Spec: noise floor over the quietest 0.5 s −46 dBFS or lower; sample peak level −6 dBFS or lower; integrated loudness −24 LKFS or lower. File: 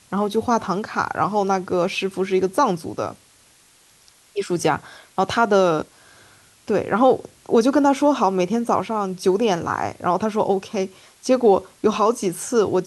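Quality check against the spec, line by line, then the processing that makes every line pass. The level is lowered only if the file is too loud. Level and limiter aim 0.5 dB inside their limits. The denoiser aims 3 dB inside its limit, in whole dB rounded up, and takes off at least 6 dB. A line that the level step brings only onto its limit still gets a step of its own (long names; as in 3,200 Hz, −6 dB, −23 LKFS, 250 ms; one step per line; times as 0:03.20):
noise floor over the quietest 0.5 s −54 dBFS: in spec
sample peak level −4.0 dBFS: out of spec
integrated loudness −21.0 LKFS: out of spec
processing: level −3.5 dB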